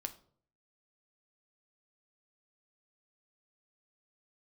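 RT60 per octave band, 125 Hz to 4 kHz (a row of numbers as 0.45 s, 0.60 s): 0.75 s, 0.65 s, 0.60 s, 0.50 s, 0.35 s, 0.35 s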